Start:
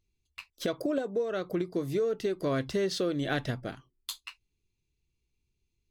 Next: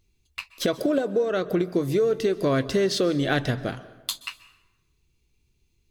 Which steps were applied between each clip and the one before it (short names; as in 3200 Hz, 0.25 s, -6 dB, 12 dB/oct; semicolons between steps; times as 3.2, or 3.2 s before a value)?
in parallel at -1 dB: compressor, threshold -39 dBFS, peak gain reduction 13 dB; on the sum: plate-style reverb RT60 1.1 s, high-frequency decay 0.65×, pre-delay 0.115 s, DRR 16 dB; gain +5 dB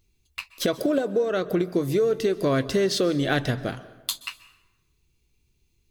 high shelf 10000 Hz +5 dB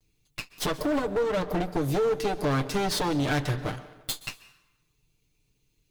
minimum comb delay 6.7 ms; overloaded stage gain 21.5 dB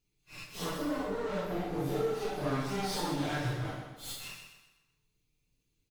phase scrambler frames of 0.2 s; on a send: feedback echo 0.126 s, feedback 42%, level -7.5 dB; on the sum: gain -7.5 dB